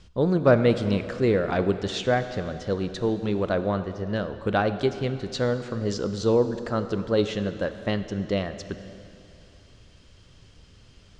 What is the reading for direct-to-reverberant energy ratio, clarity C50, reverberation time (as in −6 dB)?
9.5 dB, 10.5 dB, 2.8 s